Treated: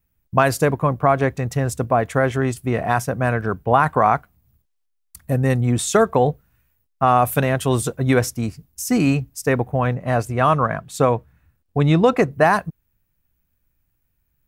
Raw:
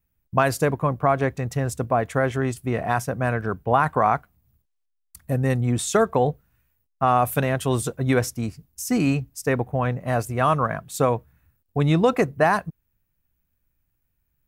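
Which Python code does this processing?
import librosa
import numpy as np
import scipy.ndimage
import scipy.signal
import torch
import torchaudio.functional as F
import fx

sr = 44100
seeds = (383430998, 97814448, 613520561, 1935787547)

y = fx.high_shelf(x, sr, hz=10000.0, db=-11.0, at=(9.95, 12.31))
y = y * 10.0 ** (3.5 / 20.0)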